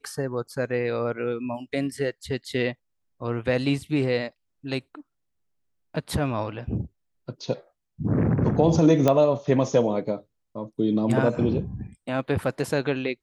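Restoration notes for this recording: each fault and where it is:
0:09.08: click −8 dBFS

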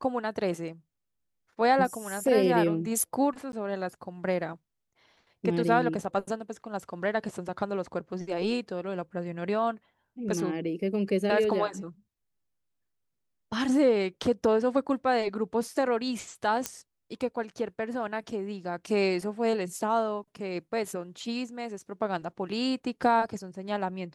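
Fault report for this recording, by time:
0:03.52–0:03.53: drop-out
0:16.66: click −13 dBFS

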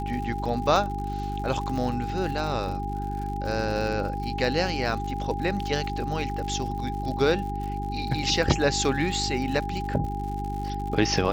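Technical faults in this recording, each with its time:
surface crackle 100 per second −34 dBFS
mains hum 50 Hz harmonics 8 −32 dBFS
whistle 810 Hz −32 dBFS
0:00.76: drop-out 2.2 ms

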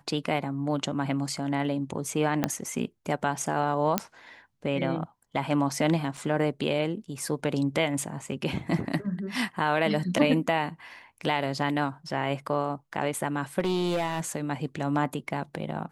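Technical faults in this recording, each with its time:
0:02.44: click −10 dBFS
0:03.98: click −7 dBFS
0:06.17: drop-out 4.2 ms
0:13.59–0:14.20: clipping −23 dBFS

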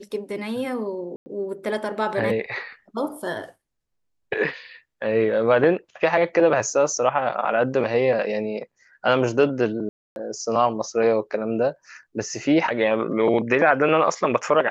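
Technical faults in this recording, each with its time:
0:01.16–0:01.26: drop-out 100 ms
0:09.89–0:10.16: drop-out 271 ms

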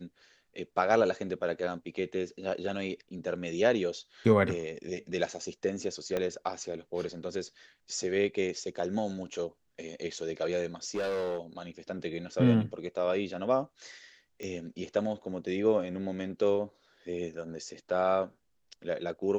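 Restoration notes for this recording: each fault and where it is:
0:06.17: click −18 dBFS
0:10.84–0:11.39: clipping −28.5 dBFS
0:14.43: click −26 dBFS

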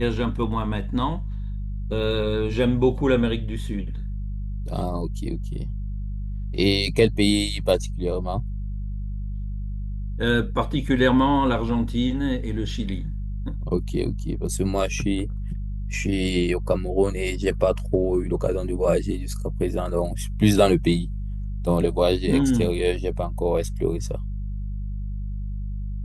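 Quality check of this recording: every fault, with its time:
mains hum 50 Hz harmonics 4 −29 dBFS

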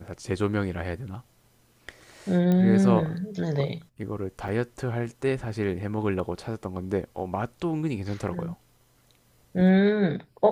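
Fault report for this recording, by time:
0:02.52: click −15 dBFS
0:04.48–0:04.49: drop-out 5.3 ms

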